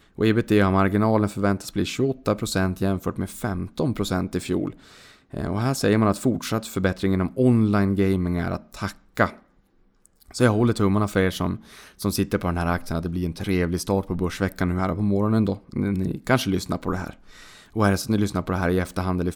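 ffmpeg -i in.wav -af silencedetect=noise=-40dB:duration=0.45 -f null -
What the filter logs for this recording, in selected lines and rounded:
silence_start: 9.37
silence_end: 10.06 | silence_duration: 0.69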